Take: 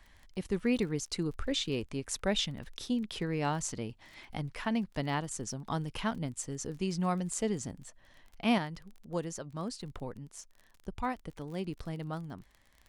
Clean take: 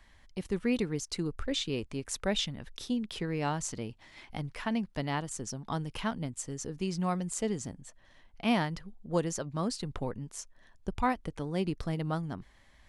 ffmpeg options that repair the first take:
ffmpeg -i in.wav -af "adeclick=threshold=4,asetnsamples=nb_out_samples=441:pad=0,asendcmd='8.58 volume volume 5.5dB',volume=0dB" out.wav

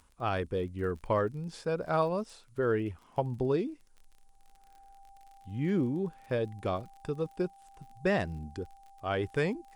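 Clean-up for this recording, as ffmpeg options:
ffmpeg -i in.wav -af "adeclick=threshold=4,bandreject=frequency=790:width=30,agate=range=-21dB:threshold=-50dB" out.wav

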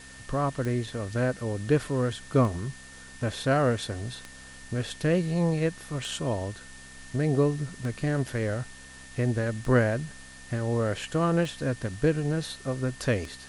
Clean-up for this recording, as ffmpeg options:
ffmpeg -i in.wav -af "adeclick=threshold=4,bandreject=frequency=65.6:width_type=h:width=4,bandreject=frequency=131.2:width_type=h:width=4,bandreject=frequency=196.8:width_type=h:width=4,bandreject=frequency=262.4:width_type=h:width=4,bandreject=frequency=1800:width=30,afftdn=noise_reduction=26:noise_floor=-46" out.wav

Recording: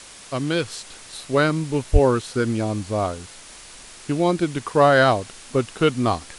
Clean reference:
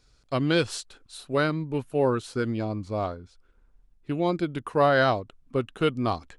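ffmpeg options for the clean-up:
ffmpeg -i in.wav -filter_complex "[0:a]asplit=3[link_01][link_02][link_03];[link_01]afade=type=out:start_time=1.92:duration=0.02[link_04];[link_02]highpass=frequency=140:width=0.5412,highpass=frequency=140:width=1.3066,afade=type=in:start_time=1.92:duration=0.02,afade=type=out:start_time=2.04:duration=0.02[link_05];[link_03]afade=type=in:start_time=2.04:duration=0.02[link_06];[link_04][link_05][link_06]amix=inputs=3:normalize=0,afwtdn=0.01,asetnsamples=nb_out_samples=441:pad=0,asendcmd='0.81 volume volume -5.5dB',volume=0dB" out.wav

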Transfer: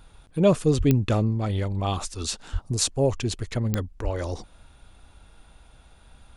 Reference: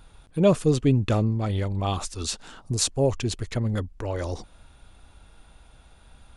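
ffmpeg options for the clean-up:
ffmpeg -i in.wav -filter_complex "[0:a]adeclick=threshold=4,asplit=3[link_01][link_02][link_03];[link_01]afade=type=out:start_time=0.77:duration=0.02[link_04];[link_02]highpass=frequency=140:width=0.5412,highpass=frequency=140:width=1.3066,afade=type=in:start_time=0.77:duration=0.02,afade=type=out:start_time=0.89:duration=0.02[link_05];[link_03]afade=type=in:start_time=0.89:duration=0.02[link_06];[link_04][link_05][link_06]amix=inputs=3:normalize=0,asplit=3[link_07][link_08][link_09];[link_07]afade=type=out:start_time=2.52:duration=0.02[link_10];[link_08]highpass=frequency=140:width=0.5412,highpass=frequency=140:width=1.3066,afade=type=in:start_time=2.52:duration=0.02,afade=type=out:start_time=2.64:duration=0.02[link_11];[link_09]afade=type=in:start_time=2.64:duration=0.02[link_12];[link_10][link_11][link_12]amix=inputs=3:normalize=0,asplit=3[link_13][link_14][link_15];[link_13]afade=type=out:start_time=4.03:duration=0.02[link_16];[link_14]highpass=frequency=140:width=0.5412,highpass=frequency=140:width=1.3066,afade=type=in:start_time=4.03:duration=0.02,afade=type=out:start_time=4.15:duration=0.02[link_17];[link_15]afade=type=in:start_time=4.15:duration=0.02[link_18];[link_16][link_17][link_18]amix=inputs=3:normalize=0" out.wav

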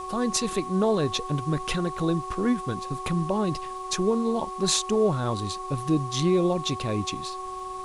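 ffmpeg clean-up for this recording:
ffmpeg -i in.wav -af "adeclick=threshold=4,bandreject=frequency=374.1:width_type=h:width=4,bandreject=frequency=748.2:width_type=h:width=4,bandreject=frequency=1122.3:width_type=h:width=4,bandreject=frequency=1100:width=30,afwtdn=0.0032" out.wav

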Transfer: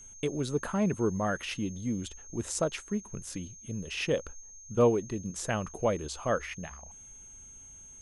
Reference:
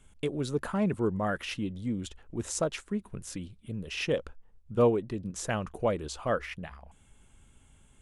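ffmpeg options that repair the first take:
ffmpeg -i in.wav -af "bandreject=frequency=6400:width=30" out.wav

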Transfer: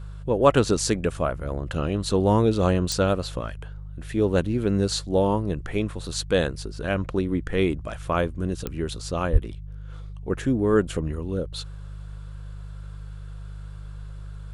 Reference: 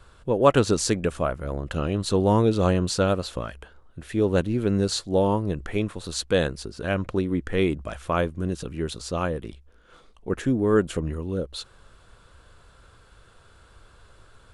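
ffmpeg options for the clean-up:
ffmpeg -i in.wav -filter_complex "[0:a]adeclick=threshold=4,bandreject=frequency=50.6:width_type=h:width=4,bandreject=frequency=101.2:width_type=h:width=4,bandreject=frequency=151.8:width_type=h:width=4,asplit=3[link_01][link_02][link_03];[link_01]afade=type=out:start_time=9.32:duration=0.02[link_04];[link_02]highpass=frequency=140:width=0.5412,highpass=frequency=140:width=1.3066,afade=type=in:start_time=9.32:duration=0.02,afade=type=out:start_time=9.44:duration=0.02[link_05];[link_03]afade=type=in:start_time=9.44:duration=0.02[link_06];[link_04][link_05][link_06]amix=inputs=3:normalize=0" out.wav

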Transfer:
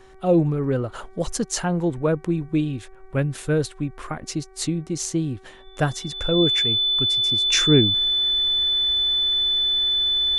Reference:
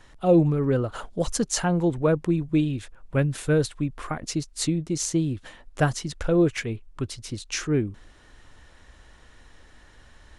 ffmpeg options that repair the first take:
ffmpeg -i in.wav -af "bandreject=frequency=380.4:width_type=h:width=4,bandreject=frequency=760.8:width_type=h:width=4,bandreject=frequency=1141.2:width_type=h:width=4,bandreject=frequency=1521.6:width_type=h:width=4,bandreject=frequency=1902:width_type=h:width=4,bandreject=frequency=2282.4:width_type=h:width=4,bandreject=frequency=3500:width=30,asetnsamples=nb_out_samples=441:pad=0,asendcmd='7.46 volume volume -7dB',volume=0dB" out.wav

